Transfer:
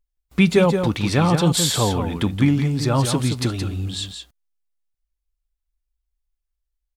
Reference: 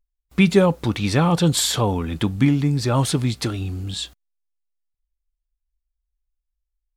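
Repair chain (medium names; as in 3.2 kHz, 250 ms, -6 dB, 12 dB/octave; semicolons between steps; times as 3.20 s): inverse comb 172 ms -7 dB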